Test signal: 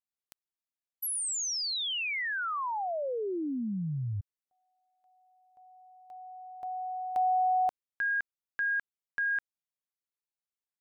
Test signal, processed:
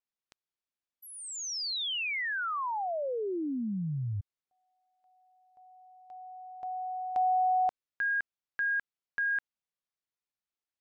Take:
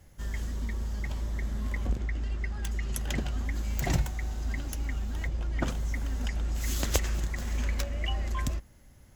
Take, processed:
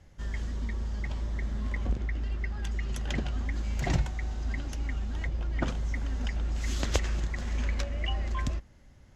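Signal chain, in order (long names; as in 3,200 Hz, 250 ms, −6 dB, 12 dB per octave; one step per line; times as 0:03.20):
low-pass filter 5,600 Hz 12 dB per octave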